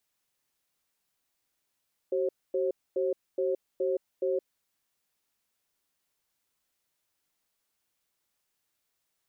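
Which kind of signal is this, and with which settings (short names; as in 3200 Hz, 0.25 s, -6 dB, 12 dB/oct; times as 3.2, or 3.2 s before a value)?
cadence 379 Hz, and 536 Hz, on 0.17 s, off 0.25 s, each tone -28 dBFS 2.47 s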